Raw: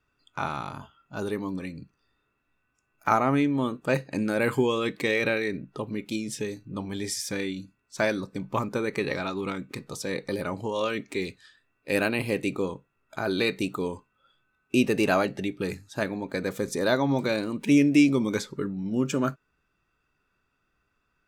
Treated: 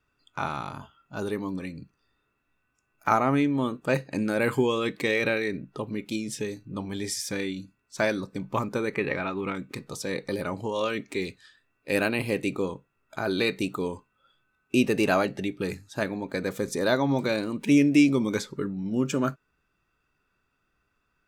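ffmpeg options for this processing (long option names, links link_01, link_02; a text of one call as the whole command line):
ffmpeg -i in.wav -filter_complex "[0:a]asettb=1/sr,asplit=3[link_01][link_02][link_03];[link_01]atrim=end=8.944[link_04];[link_02]atrim=start=8.94:end=9.55,asetpts=PTS-STARTPTS,afade=type=in:duration=0.004:curve=qsin,afade=type=out:start_time=0.606:duration=0.004:curve=qsin,highshelf=frequency=3400:width_type=q:width=1.5:gain=-9.5[link_05];[link_03]atrim=start=9.546[link_06];[link_04][link_05]acrossfade=duration=0.004:curve1=hsin:curve2=qsin[link_07];[link_07][link_06]acrossfade=duration=0.004:curve1=qsin:curve2=hsin" out.wav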